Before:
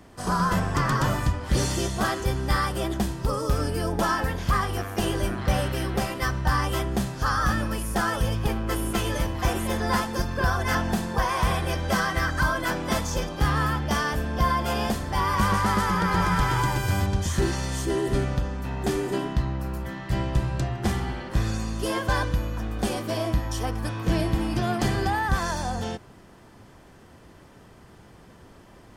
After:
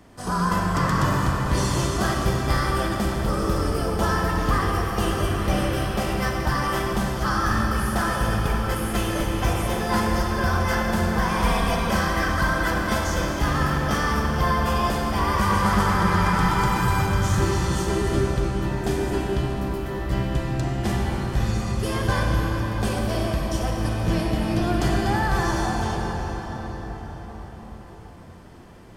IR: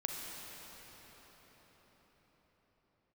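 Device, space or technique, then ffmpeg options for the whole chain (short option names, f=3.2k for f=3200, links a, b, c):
cathedral: -filter_complex "[1:a]atrim=start_sample=2205[a];[0:a][a]afir=irnorm=-1:irlink=0,asettb=1/sr,asplit=3[b][c][d];[b]atrim=end=11.434[e];[c]atrim=start=11.43:end=11.91,asetpts=PTS-STARTPTS,afade=t=in:d=0.004:c=qsin,afade=t=out:st=0.476:d=0.004:c=qsin,aecho=1:1:4.3:0.71,atrim=end_sample=21168[f];[d]atrim=start=11.906[g];[e][f]acrossfade=d=0.004:c1=hsin:c2=qsin[h];[h][g]acrossfade=d=0.004:c1=qsin:c2=hsin"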